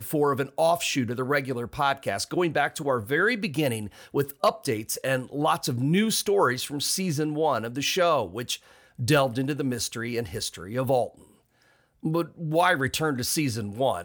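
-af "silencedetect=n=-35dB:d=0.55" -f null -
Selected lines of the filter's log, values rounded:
silence_start: 11.08
silence_end: 12.04 | silence_duration: 0.96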